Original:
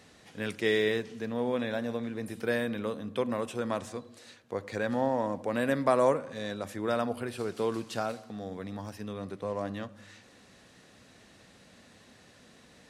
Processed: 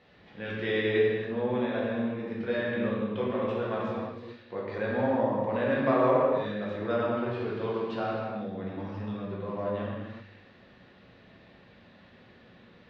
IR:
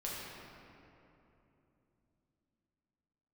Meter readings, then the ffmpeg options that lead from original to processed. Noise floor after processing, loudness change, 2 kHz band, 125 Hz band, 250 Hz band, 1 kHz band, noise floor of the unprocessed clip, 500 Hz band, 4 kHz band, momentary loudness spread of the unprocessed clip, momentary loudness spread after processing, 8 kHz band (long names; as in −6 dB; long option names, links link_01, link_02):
−56 dBFS, +2.0 dB, +1.0 dB, +4.0 dB, +2.5 dB, +2.0 dB, −58 dBFS, +2.5 dB, −2.0 dB, 13 LU, 12 LU, below −20 dB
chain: -filter_complex "[0:a]lowpass=frequency=3700:width=0.5412,lowpass=frequency=3700:width=1.3066[link_01];[1:a]atrim=start_sample=2205,afade=type=out:start_time=0.41:duration=0.01,atrim=end_sample=18522[link_02];[link_01][link_02]afir=irnorm=-1:irlink=0"